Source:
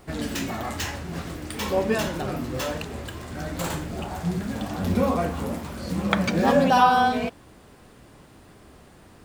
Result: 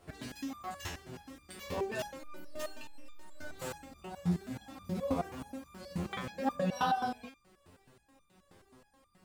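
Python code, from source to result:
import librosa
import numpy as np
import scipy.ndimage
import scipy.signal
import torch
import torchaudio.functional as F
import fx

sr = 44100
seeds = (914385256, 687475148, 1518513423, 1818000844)

y = fx.robotise(x, sr, hz=303.0, at=(2.19, 3.51))
y = fx.wow_flutter(y, sr, seeds[0], rate_hz=2.1, depth_cents=28.0)
y = fx.resonator_held(y, sr, hz=9.4, low_hz=88.0, high_hz=1200.0)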